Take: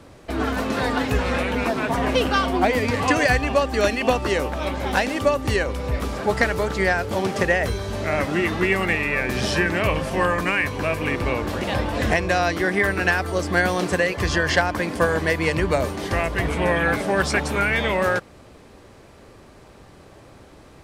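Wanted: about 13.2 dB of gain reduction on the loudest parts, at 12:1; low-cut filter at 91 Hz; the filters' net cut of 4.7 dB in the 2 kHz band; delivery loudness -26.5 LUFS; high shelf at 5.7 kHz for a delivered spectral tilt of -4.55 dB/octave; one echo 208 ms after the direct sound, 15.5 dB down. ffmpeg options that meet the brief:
-af "highpass=91,equalizer=f=2000:t=o:g=-5,highshelf=f=5700:g=-8,acompressor=threshold=0.0398:ratio=12,aecho=1:1:208:0.168,volume=2"

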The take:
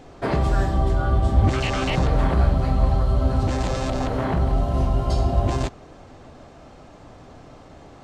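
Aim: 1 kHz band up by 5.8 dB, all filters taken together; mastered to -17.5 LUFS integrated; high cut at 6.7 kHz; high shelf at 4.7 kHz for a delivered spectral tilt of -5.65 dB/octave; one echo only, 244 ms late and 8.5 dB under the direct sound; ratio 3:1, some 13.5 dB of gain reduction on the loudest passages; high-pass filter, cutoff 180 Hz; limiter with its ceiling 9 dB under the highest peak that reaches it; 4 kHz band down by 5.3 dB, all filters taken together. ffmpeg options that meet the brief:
-af "highpass=180,lowpass=6700,equalizer=f=1000:t=o:g=8.5,equalizer=f=4000:t=o:g=-5,highshelf=f=4700:g=-6,acompressor=threshold=0.0126:ratio=3,alimiter=level_in=2.82:limit=0.0631:level=0:latency=1,volume=0.355,aecho=1:1:244:0.376,volume=15.8"

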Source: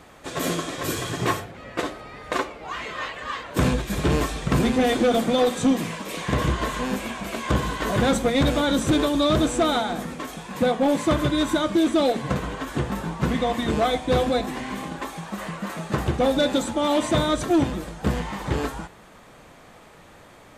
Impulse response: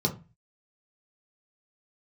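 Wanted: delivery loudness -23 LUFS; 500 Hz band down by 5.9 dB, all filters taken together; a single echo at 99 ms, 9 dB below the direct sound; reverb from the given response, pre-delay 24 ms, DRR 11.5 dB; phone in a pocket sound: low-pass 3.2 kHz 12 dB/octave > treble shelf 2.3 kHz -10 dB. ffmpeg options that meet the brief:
-filter_complex "[0:a]equalizer=f=500:t=o:g=-6.5,aecho=1:1:99:0.355,asplit=2[s0][s1];[1:a]atrim=start_sample=2205,adelay=24[s2];[s1][s2]afir=irnorm=-1:irlink=0,volume=0.1[s3];[s0][s3]amix=inputs=2:normalize=0,lowpass=3200,highshelf=f=2300:g=-10,volume=1.33"

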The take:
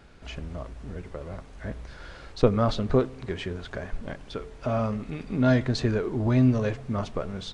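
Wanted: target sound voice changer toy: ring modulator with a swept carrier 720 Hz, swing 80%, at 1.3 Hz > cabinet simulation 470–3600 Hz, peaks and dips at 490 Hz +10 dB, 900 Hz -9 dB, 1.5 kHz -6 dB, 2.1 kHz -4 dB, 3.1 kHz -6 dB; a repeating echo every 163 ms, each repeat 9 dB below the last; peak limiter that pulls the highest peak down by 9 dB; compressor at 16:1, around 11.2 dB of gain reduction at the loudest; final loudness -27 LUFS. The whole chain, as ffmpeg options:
-af "acompressor=threshold=0.0631:ratio=16,alimiter=limit=0.0708:level=0:latency=1,aecho=1:1:163|326|489|652:0.355|0.124|0.0435|0.0152,aeval=exprs='val(0)*sin(2*PI*720*n/s+720*0.8/1.3*sin(2*PI*1.3*n/s))':c=same,highpass=470,equalizer=f=490:t=q:w=4:g=10,equalizer=f=900:t=q:w=4:g=-9,equalizer=f=1500:t=q:w=4:g=-6,equalizer=f=2100:t=q:w=4:g=-4,equalizer=f=3100:t=q:w=4:g=-6,lowpass=f=3600:w=0.5412,lowpass=f=3600:w=1.3066,volume=3.98"

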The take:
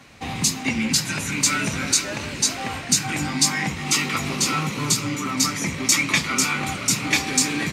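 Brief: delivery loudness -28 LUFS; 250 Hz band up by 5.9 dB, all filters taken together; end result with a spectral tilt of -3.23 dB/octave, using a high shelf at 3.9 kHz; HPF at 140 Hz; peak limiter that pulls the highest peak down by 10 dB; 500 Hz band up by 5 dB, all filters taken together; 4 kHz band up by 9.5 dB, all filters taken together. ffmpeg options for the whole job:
-af "highpass=140,equalizer=f=250:t=o:g=6.5,equalizer=f=500:t=o:g=4,highshelf=f=3900:g=5.5,equalizer=f=4000:t=o:g=8,volume=0.316,alimiter=limit=0.168:level=0:latency=1"

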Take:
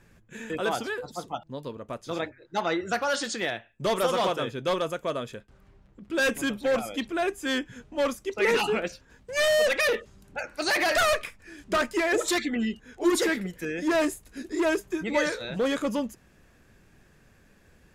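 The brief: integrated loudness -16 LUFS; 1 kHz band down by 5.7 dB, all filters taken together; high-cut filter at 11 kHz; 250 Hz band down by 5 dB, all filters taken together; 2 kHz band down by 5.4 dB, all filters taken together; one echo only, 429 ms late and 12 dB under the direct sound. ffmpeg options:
-af "lowpass=11000,equalizer=f=250:t=o:g=-6.5,equalizer=f=1000:t=o:g=-6.5,equalizer=f=2000:t=o:g=-4.5,aecho=1:1:429:0.251,volume=5.62"

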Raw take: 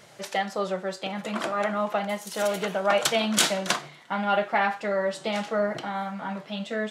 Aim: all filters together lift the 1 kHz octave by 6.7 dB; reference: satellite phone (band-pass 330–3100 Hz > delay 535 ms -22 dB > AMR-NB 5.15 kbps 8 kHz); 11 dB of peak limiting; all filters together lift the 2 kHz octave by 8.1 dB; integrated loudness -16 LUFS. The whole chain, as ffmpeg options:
-af "equalizer=f=1000:t=o:g=7,equalizer=f=2000:t=o:g=8.5,alimiter=limit=0.2:level=0:latency=1,highpass=330,lowpass=3100,aecho=1:1:535:0.0794,volume=3.98" -ar 8000 -c:a libopencore_amrnb -b:a 5150

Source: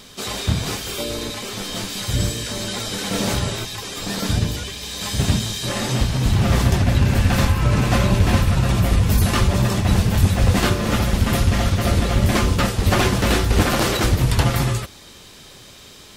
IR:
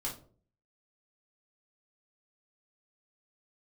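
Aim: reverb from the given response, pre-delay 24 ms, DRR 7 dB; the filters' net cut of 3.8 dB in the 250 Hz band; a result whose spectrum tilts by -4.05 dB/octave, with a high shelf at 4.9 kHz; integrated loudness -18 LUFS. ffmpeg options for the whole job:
-filter_complex "[0:a]equalizer=f=250:t=o:g=-5.5,highshelf=f=4900:g=8,asplit=2[s0][s1];[1:a]atrim=start_sample=2205,adelay=24[s2];[s1][s2]afir=irnorm=-1:irlink=0,volume=0.376[s3];[s0][s3]amix=inputs=2:normalize=0,volume=1.06"

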